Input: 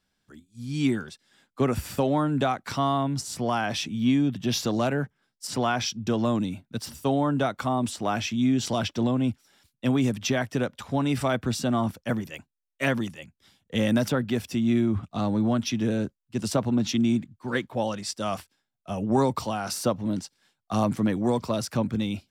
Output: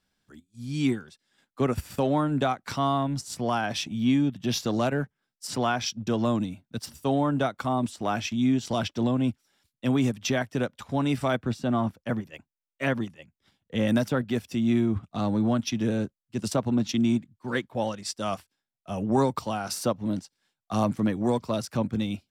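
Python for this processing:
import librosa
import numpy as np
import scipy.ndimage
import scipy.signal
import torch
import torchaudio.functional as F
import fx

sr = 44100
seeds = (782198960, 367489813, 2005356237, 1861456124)

y = fx.high_shelf(x, sr, hz=4100.0, db=-9.0, at=(11.42, 13.88))
y = fx.transient(y, sr, attack_db=-2, sustain_db=-8)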